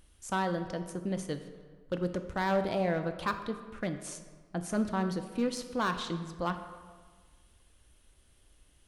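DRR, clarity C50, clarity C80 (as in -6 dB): 7.5 dB, 9.5 dB, 11.0 dB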